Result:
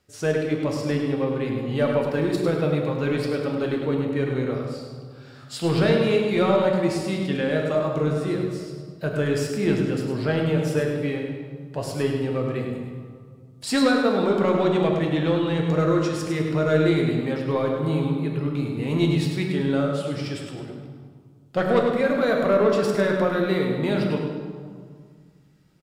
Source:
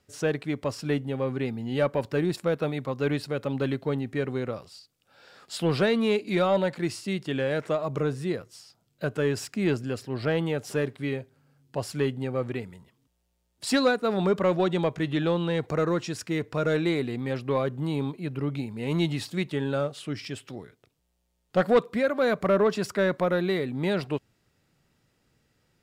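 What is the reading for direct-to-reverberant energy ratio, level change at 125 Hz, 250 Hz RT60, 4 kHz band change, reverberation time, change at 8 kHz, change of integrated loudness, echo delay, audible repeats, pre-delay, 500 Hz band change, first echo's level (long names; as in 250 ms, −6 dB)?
−0.5 dB, +5.5 dB, 2.3 s, +2.5 dB, 1.9 s, +2.0 dB, +4.0 dB, 102 ms, 1, 6 ms, +4.0 dB, −7.0 dB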